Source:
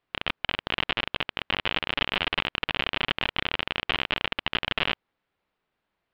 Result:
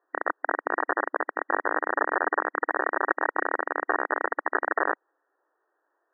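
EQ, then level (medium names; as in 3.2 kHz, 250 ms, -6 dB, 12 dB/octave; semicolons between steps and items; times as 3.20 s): brick-wall FIR high-pass 290 Hz; brick-wall FIR low-pass 1.9 kHz; +7.5 dB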